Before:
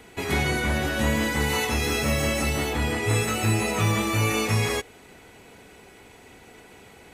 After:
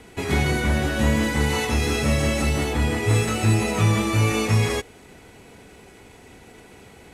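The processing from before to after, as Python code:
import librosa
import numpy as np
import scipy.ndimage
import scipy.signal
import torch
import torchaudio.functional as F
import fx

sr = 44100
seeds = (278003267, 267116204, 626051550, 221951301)

y = fx.cvsd(x, sr, bps=64000)
y = fx.low_shelf(y, sr, hz=370.0, db=5.5)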